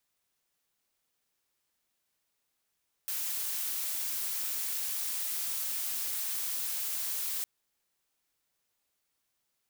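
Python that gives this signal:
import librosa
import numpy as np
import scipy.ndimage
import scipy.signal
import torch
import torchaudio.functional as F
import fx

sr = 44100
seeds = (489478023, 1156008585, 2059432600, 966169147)

y = fx.noise_colour(sr, seeds[0], length_s=4.36, colour='blue', level_db=-34.0)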